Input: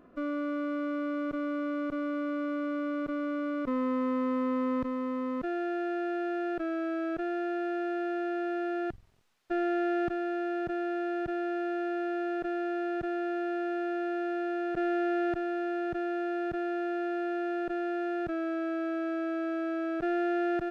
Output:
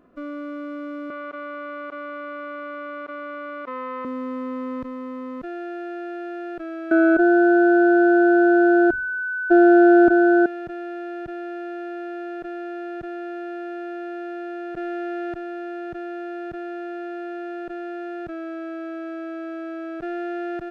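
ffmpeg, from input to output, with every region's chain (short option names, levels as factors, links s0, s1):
-filter_complex "[0:a]asettb=1/sr,asplit=3[s0][s1][s2];[s0]atrim=end=1.104[s3];[s1]atrim=start=1.1:end=4.05,asetpts=PTS-STARTPTS,afade=t=in:d=0.004:c=qsin,afade=t=out:st=2.946:d=0.004:c=qsin,acontrast=67,highpass=680,lowpass=3000[s4];[s2]atrim=start=4.046[s5];[s3][s4]acrossfade=d=0.004:c1=hsin:c2=qsin[s6];[s6][s5]acrossfade=d=0.004:c1=qsin:c2=hsin,asettb=1/sr,asplit=3[s7][s8][s9];[s7]atrim=end=6.914[s10];[s8]atrim=start=6.91:end=10.46,asetpts=PTS-STARTPTS,afade=t=in:d=0.004:c=qsin,afade=t=out:st=3.546:d=0.004:c=qsin,equalizer=f=450:w=0.47:g=14.5,aeval=exprs='val(0)+0.0891*sin(2*PI*1500*n/s)':c=same,aecho=1:1:3.1:0.58,atrim=end_sample=156555[s11];[s9]atrim=start=10.456[s12];[s10][s11]acrossfade=d=0.004:c1=hsin:c2=qsin[s13];[s13][s12]acrossfade=d=0.004:c1=qsin:c2=hsin"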